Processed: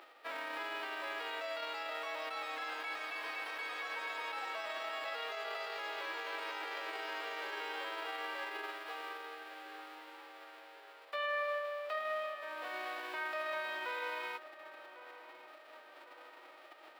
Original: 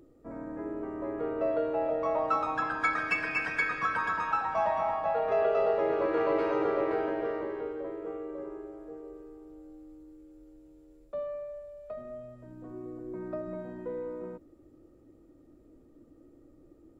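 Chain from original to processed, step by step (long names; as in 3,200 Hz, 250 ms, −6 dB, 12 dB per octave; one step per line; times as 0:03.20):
spectral envelope flattened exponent 0.1
high-pass filter 430 Hz 24 dB per octave
compressor whose output falls as the input rises −33 dBFS, ratio −1
brickwall limiter −30.5 dBFS, peak gain reduction 11 dB
high-frequency loss of the air 430 metres
feedback echo with a low-pass in the loop 1,101 ms, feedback 61%, low-pass 1,900 Hz, level −14 dB
level +6.5 dB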